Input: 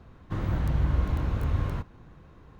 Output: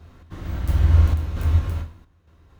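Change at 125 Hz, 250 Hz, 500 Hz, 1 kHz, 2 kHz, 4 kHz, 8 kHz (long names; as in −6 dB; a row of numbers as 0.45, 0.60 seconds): +8.0 dB, 0.0 dB, +0.5 dB, +0.5 dB, +2.5 dB, +6.0 dB, can't be measured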